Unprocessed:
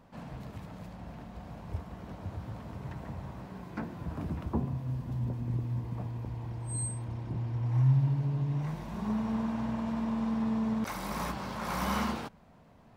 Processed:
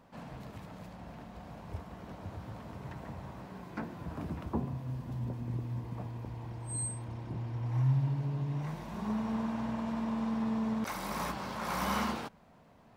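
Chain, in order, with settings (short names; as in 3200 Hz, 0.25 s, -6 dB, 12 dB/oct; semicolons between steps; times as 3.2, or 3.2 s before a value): low shelf 170 Hz -6 dB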